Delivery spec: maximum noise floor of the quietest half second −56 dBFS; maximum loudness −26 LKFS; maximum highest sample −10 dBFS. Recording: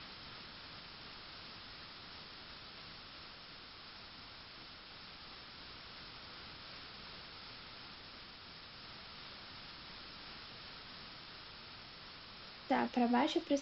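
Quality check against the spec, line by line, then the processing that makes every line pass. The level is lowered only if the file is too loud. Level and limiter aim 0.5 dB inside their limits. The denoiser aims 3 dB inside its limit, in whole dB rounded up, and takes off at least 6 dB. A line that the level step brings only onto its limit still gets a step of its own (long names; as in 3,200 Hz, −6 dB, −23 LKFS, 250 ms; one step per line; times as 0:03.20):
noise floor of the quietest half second −53 dBFS: out of spec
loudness −44.5 LKFS: in spec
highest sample −20.5 dBFS: in spec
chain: broadband denoise 6 dB, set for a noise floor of −53 dBFS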